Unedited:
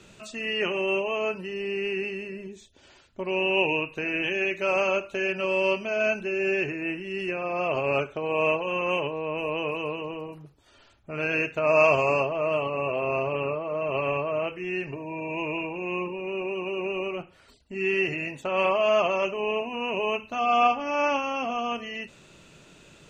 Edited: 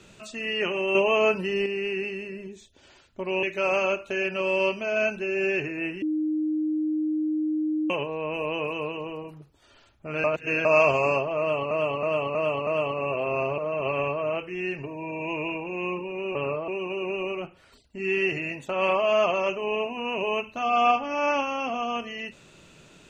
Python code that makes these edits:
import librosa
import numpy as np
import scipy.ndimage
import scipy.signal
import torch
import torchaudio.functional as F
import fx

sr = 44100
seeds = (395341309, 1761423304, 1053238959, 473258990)

y = fx.edit(x, sr, fx.clip_gain(start_s=0.95, length_s=0.71, db=6.5),
    fx.cut(start_s=3.43, length_s=1.04),
    fx.bleep(start_s=7.06, length_s=1.88, hz=309.0, db=-23.0),
    fx.reverse_span(start_s=11.28, length_s=0.41),
    fx.repeat(start_s=12.43, length_s=0.32, count=5),
    fx.move(start_s=13.34, length_s=0.33, to_s=16.44), tone=tone)